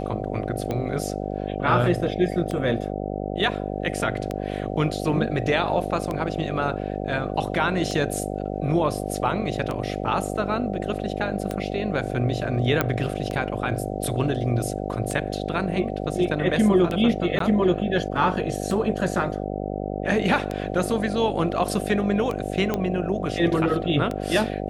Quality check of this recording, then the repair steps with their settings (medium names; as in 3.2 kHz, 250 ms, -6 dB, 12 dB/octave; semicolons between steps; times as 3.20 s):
buzz 50 Hz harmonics 15 -29 dBFS
tick 33 1/3 rpm -15 dBFS
12.81 s: pop -7 dBFS
17.39–17.40 s: dropout 13 ms
22.74 s: pop -11 dBFS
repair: de-click; de-hum 50 Hz, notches 15; interpolate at 17.39 s, 13 ms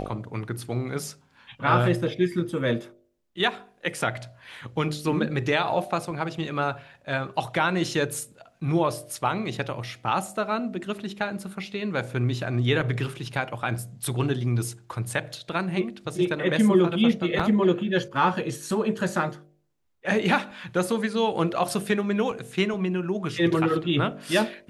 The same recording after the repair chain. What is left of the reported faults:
nothing left